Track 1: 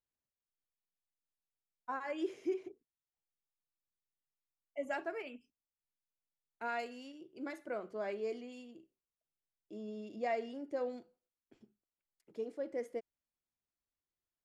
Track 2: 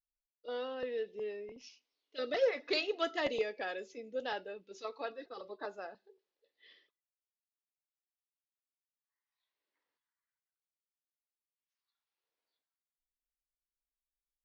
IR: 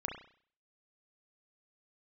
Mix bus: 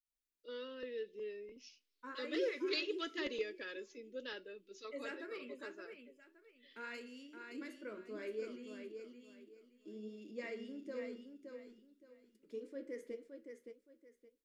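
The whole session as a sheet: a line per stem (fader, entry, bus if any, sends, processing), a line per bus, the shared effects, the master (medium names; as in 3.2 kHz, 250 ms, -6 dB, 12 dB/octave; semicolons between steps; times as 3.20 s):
-0.5 dB, 0.15 s, send -8.5 dB, echo send -4 dB, flange 1.9 Hz, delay 7.3 ms, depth 5.6 ms, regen +63%
-3.0 dB, 0.00 s, no send, no echo send, none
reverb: on, RT60 0.50 s, pre-delay 32 ms
echo: feedback delay 569 ms, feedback 26%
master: static phaser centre 310 Hz, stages 4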